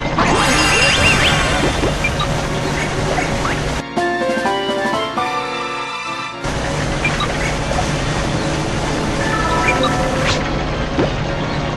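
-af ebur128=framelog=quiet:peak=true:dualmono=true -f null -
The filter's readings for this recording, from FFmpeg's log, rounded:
Integrated loudness:
  I:         -13.9 LUFS
  Threshold: -23.9 LUFS
Loudness range:
  LRA:         5.0 LU
  Threshold: -34.7 LUFS
  LRA low:   -16.5 LUFS
  LRA high:  -11.5 LUFS
True peak:
  Peak:       -2.3 dBFS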